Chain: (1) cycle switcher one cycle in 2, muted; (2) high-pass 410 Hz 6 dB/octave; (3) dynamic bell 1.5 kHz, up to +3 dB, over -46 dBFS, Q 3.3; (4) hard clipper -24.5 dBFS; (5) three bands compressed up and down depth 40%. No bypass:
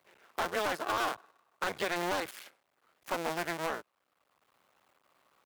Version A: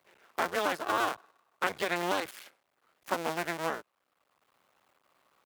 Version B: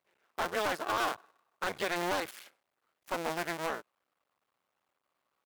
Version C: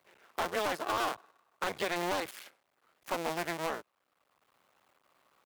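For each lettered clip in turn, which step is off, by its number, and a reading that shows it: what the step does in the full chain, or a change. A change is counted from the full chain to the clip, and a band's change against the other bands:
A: 4, distortion -10 dB; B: 5, crest factor change -5.0 dB; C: 3, 2 kHz band -1.5 dB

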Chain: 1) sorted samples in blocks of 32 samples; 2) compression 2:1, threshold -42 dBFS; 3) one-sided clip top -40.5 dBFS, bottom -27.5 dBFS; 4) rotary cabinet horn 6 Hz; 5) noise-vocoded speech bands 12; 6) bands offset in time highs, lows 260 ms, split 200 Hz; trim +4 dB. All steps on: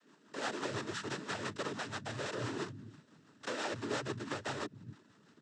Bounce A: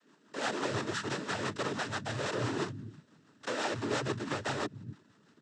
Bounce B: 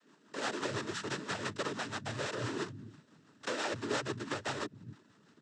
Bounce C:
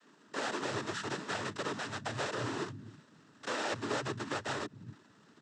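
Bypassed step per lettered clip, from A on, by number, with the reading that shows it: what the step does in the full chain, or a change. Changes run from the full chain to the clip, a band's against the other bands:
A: 2, mean gain reduction 8.0 dB; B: 3, distortion -10 dB; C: 4, momentary loudness spread change -2 LU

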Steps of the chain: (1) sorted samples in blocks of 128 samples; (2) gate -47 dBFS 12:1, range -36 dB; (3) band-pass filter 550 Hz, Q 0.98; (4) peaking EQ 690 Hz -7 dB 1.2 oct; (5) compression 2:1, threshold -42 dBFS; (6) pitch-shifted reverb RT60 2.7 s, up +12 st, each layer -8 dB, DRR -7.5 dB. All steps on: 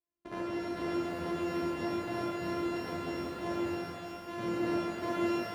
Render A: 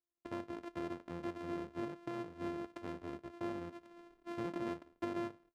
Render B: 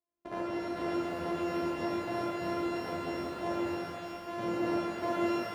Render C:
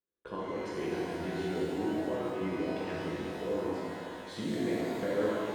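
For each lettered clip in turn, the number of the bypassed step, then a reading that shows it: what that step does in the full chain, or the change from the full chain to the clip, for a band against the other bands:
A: 6, 4 kHz band -4.0 dB; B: 4, 1 kHz band +2.5 dB; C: 1, 500 Hz band +3.0 dB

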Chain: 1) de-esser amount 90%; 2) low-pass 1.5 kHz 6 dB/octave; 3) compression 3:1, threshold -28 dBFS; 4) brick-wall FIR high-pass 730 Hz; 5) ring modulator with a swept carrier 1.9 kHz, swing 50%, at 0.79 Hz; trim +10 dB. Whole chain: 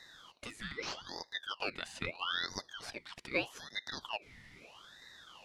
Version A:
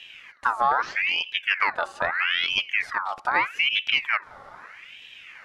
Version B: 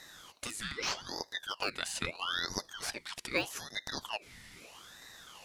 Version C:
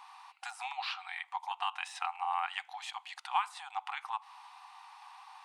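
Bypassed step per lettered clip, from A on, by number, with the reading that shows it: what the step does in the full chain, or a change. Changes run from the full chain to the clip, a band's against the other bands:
4, 250 Hz band -15.0 dB; 2, 8 kHz band +8.0 dB; 5, crest factor change -3.0 dB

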